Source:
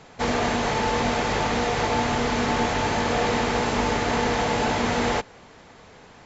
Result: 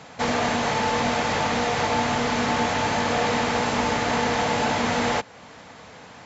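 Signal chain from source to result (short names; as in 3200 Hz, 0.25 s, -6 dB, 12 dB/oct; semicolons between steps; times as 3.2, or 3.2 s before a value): HPF 71 Hz; bell 380 Hz -10 dB 0.25 oct; in parallel at -2 dB: compressor, threshold -37 dBFS, peak gain reduction 16 dB; on the sum: low shelf 140 Hz -3.5 dB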